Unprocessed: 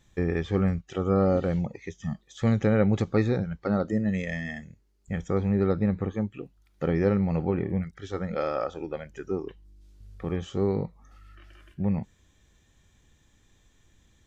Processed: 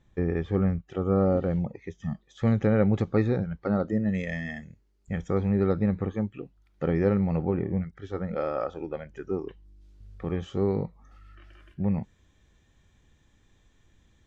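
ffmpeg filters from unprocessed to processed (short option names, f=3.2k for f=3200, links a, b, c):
-af "asetnsamples=n=441:p=0,asendcmd='1.91 lowpass f 2200;4.15 lowpass f 4700;6.3 lowpass f 2900;7.37 lowpass f 1500;8.58 lowpass f 2200;9.33 lowpass f 3600',lowpass=f=1.3k:p=1"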